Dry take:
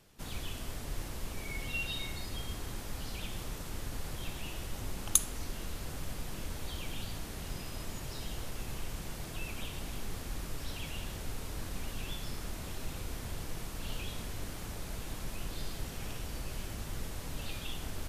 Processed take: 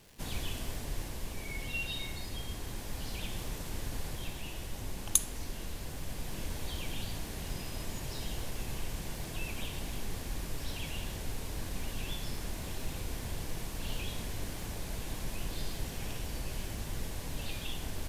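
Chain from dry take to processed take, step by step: crackle 250 per s -48 dBFS; gain riding 2 s; peaking EQ 1.3 kHz -7 dB 0.21 oct

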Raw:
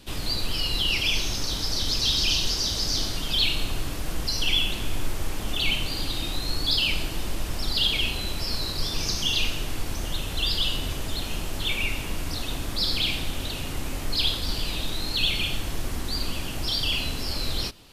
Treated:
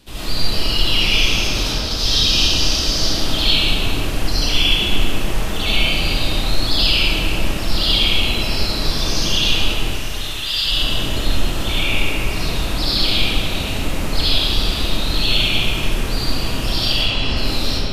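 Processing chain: 1.35–1.91 s: compressor with a negative ratio -28 dBFS, ratio -0.5; 9.75–10.65 s: high-pass 1.5 kHz 12 dB/octave; 16.95–17.37 s: distance through air 86 m; reverberation RT60 3.0 s, pre-delay 35 ms, DRR -11 dB; trim -1.5 dB

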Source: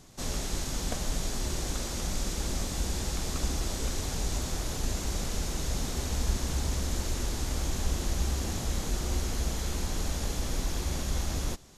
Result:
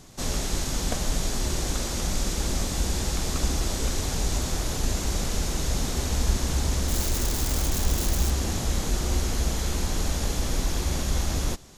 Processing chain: 6.88–8.30 s: zero-crossing glitches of -29.5 dBFS; trim +5 dB

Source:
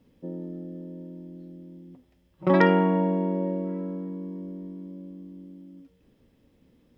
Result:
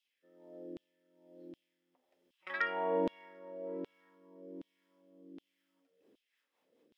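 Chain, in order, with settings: rotary cabinet horn 1.2 Hz, later 5 Hz, at 5.62 s; LFO high-pass saw down 1.3 Hz 320–3300 Hz; trim -6.5 dB

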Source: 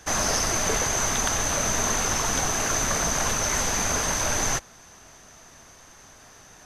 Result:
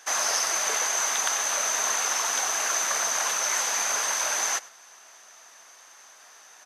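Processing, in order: high-pass 750 Hz 12 dB/octave; on a send: delay 102 ms -21.5 dB

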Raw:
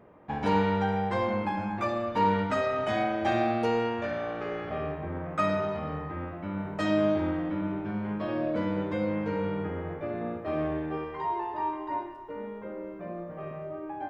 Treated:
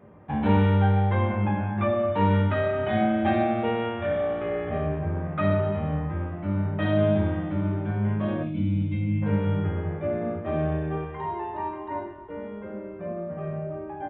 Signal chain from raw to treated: time-frequency box 8.44–9.22 s, 330–2100 Hz -21 dB; on a send at -5 dB: reverberation RT60 0.45 s, pre-delay 3 ms; on the sum: resampled via 8 kHz

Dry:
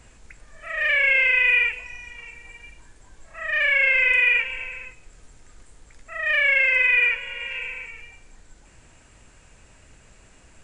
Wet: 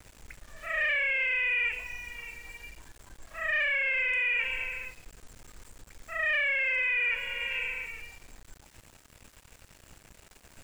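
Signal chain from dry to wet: small samples zeroed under -48 dBFS; peak limiter -19 dBFS, peak gain reduction 10.5 dB; trim -1.5 dB

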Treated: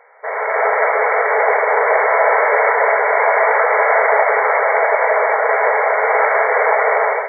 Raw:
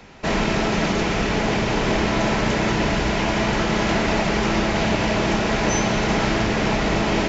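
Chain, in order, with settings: brick-wall FIR band-pass 420–2300 Hz; level rider gain up to 13.5 dB

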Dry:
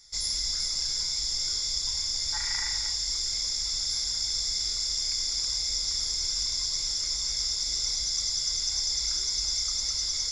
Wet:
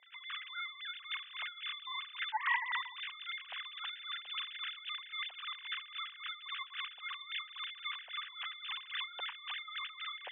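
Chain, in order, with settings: formants replaced by sine waves; wah-wah 3.7 Hz 370–1200 Hz, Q 2.2; trim +3.5 dB

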